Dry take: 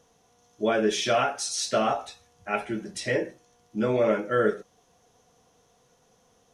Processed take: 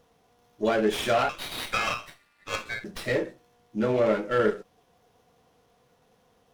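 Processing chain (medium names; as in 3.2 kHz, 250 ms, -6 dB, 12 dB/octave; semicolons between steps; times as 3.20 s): 1.29–2.84 s: ring modulator 1.9 kHz; sliding maximum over 5 samples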